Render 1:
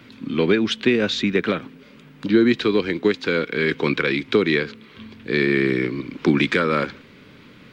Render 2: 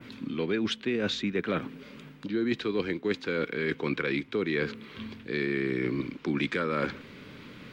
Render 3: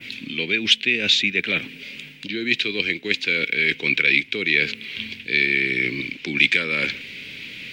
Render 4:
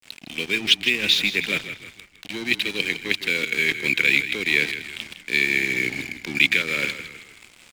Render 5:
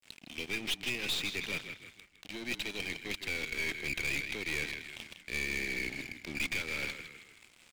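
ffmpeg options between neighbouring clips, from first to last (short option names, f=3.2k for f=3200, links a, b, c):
-af "adynamicequalizer=threshold=0.01:dfrequency=4500:dqfactor=0.75:tfrequency=4500:tqfactor=0.75:attack=5:release=100:ratio=0.375:range=2:mode=cutabove:tftype=bell,areverse,acompressor=threshold=-26dB:ratio=6,areverse"
-af "highshelf=f=1.7k:t=q:w=3:g=12.5"
-filter_complex "[0:a]aeval=exprs='sgn(val(0))*max(abs(val(0))-0.0251,0)':c=same,asplit=6[a][b][c][d][e][f];[b]adelay=159,afreqshift=-35,volume=-11dB[g];[c]adelay=318,afreqshift=-70,volume=-17.9dB[h];[d]adelay=477,afreqshift=-105,volume=-24.9dB[i];[e]adelay=636,afreqshift=-140,volume=-31.8dB[j];[f]adelay=795,afreqshift=-175,volume=-38.7dB[k];[a][g][h][i][j][k]amix=inputs=6:normalize=0"
-af "aeval=exprs='(tanh(11.2*val(0)+0.55)-tanh(0.55))/11.2':c=same,volume=-8dB"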